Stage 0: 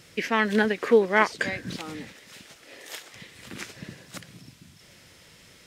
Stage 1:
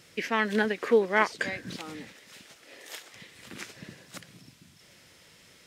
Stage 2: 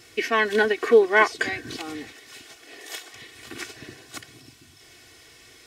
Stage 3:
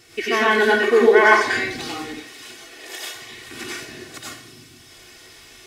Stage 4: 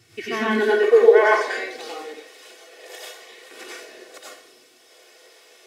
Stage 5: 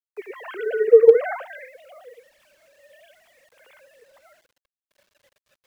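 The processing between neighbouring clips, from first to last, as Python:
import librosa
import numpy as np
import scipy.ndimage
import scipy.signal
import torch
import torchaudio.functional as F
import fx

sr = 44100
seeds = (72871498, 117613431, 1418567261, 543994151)

y1 = fx.low_shelf(x, sr, hz=110.0, db=-7.0)
y1 = y1 * 10.0 ** (-3.0 / 20.0)
y2 = y1 + 0.87 * np.pad(y1, (int(2.7 * sr / 1000.0), 0))[:len(y1)]
y2 = y2 * 10.0 ** (3.5 / 20.0)
y3 = fx.rev_plate(y2, sr, seeds[0], rt60_s=0.5, hf_ratio=0.9, predelay_ms=80, drr_db=-6.0)
y3 = y3 * 10.0 ** (-1.0 / 20.0)
y4 = fx.filter_sweep_highpass(y3, sr, from_hz=110.0, to_hz=510.0, start_s=0.22, end_s=0.91, q=5.2)
y4 = y4 * 10.0 ** (-7.0 / 20.0)
y5 = fx.sine_speech(y4, sr)
y5 = fx.quant_dither(y5, sr, seeds[1], bits=10, dither='none')
y5 = y5 * 10.0 ** (-1.0 / 20.0)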